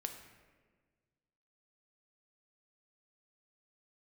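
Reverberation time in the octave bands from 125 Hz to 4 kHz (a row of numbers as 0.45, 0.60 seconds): 2.1, 1.9, 1.7, 1.3, 1.3, 0.90 seconds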